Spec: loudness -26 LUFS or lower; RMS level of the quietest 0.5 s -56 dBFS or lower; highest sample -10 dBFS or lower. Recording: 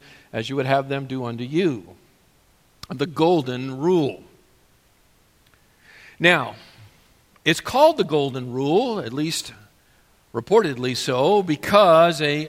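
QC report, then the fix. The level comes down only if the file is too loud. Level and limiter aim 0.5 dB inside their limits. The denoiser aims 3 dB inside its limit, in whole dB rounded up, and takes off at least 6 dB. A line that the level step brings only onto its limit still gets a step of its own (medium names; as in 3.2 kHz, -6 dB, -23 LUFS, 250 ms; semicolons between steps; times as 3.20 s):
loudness -20.5 LUFS: fail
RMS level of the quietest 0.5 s -58 dBFS: pass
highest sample -1.5 dBFS: fail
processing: trim -6 dB; peak limiter -10.5 dBFS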